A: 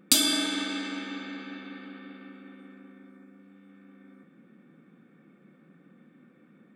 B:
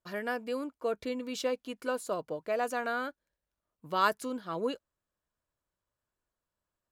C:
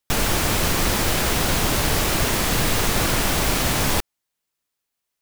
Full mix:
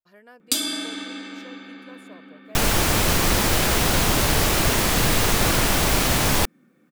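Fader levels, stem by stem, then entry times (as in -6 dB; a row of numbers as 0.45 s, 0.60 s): -2.0 dB, -15.0 dB, +1.0 dB; 0.40 s, 0.00 s, 2.45 s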